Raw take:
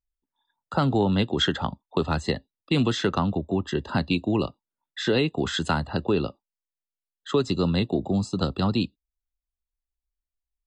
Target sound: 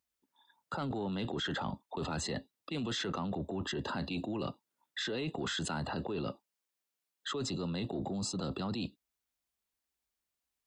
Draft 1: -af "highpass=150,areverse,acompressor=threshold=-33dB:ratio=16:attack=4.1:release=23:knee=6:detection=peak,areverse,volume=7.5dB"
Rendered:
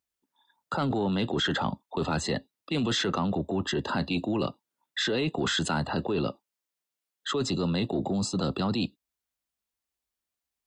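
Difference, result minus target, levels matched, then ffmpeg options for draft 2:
compressor: peak gain reduction -9 dB
-af "highpass=150,areverse,acompressor=threshold=-42.5dB:ratio=16:attack=4.1:release=23:knee=6:detection=peak,areverse,volume=7.5dB"

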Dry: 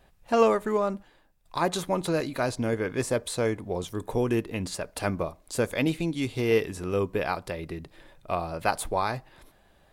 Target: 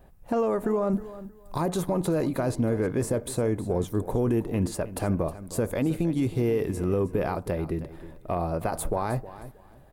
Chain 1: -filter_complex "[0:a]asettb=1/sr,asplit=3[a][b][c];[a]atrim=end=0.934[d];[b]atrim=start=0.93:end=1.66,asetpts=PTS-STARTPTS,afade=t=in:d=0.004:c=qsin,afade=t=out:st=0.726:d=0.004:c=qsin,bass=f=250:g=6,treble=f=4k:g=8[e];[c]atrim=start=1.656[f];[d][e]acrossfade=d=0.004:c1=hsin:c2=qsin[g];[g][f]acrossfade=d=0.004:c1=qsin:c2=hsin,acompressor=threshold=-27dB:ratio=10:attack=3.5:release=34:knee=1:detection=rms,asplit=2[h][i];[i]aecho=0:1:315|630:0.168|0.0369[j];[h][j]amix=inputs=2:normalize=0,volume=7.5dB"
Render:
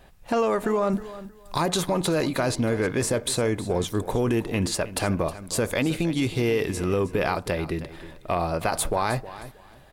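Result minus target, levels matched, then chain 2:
4000 Hz band +11.5 dB
-filter_complex "[0:a]asettb=1/sr,asplit=3[a][b][c];[a]atrim=end=0.934[d];[b]atrim=start=0.93:end=1.66,asetpts=PTS-STARTPTS,afade=t=in:d=0.004:c=qsin,afade=t=out:st=0.726:d=0.004:c=qsin,bass=f=250:g=6,treble=f=4k:g=8[e];[c]atrim=start=1.656[f];[d][e]acrossfade=d=0.004:c1=hsin:c2=qsin[g];[g][f]acrossfade=d=0.004:c1=qsin:c2=hsin,acompressor=threshold=-27dB:ratio=10:attack=3.5:release=34:knee=1:detection=rms,equalizer=f=3.7k:t=o:w=3:g=-14,asplit=2[h][i];[i]aecho=0:1:315|630:0.168|0.0369[j];[h][j]amix=inputs=2:normalize=0,volume=7.5dB"

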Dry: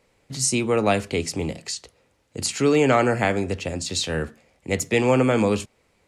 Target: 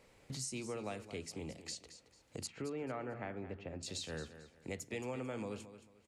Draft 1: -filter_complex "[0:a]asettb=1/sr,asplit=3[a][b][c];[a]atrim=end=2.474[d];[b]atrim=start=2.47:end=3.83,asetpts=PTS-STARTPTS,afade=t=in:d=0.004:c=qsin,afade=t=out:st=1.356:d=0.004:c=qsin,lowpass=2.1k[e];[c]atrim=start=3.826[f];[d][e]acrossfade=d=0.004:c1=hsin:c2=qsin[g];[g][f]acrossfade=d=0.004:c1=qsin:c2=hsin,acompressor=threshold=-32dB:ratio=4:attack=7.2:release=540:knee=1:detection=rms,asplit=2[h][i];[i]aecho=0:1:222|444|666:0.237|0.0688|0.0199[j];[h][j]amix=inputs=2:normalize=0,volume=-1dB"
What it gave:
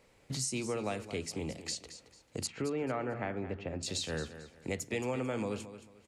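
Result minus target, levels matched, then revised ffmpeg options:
compressor: peak gain reduction -6.5 dB
-filter_complex "[0:a]asettb=1/sr,asplit=3[a][b][c];[a]atrim=end=2.474[d];[b]atrim=start=2.47:end=3.83,asetpts=PTS-STARTPTS,afade=t=in:d=0.004:c=qsin,afade=t=out:st=1.356:d=0.004:c=qsin,lowpass=2.1k[e];[c]atrim=start=3.826[f];[d][e]acrossfade=d=0.004:c1=hsin:c2=qsin[g];[g][f]acrossfade=d=0.004:c1=qsin:c2=hsin,acompressor=threshold=-41dB:ratio=4:attack=7.2:release=540:knee=1:detection=rms,asplit=2[h][i];[i]aecho=0:1:222|444|666:0.237|0.0688|0.0199[j];[h][j]amix=inputs=2:normalize=0,volume=-1dB"

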